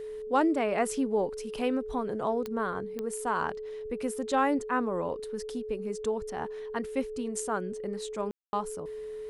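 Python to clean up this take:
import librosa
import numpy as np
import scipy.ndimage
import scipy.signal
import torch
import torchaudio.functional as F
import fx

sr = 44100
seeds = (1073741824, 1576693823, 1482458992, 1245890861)

y = fx.fix_declick_ar(x, sr, threshold=10.0)
y = fx.notch(y, sr, hz=430.0, q=30.0)
y = fx.fix_ambience(y, sr, seeds[0], print_start_s=3.52, print_end_s=4.02, start_s=8.31, end_s=8.53)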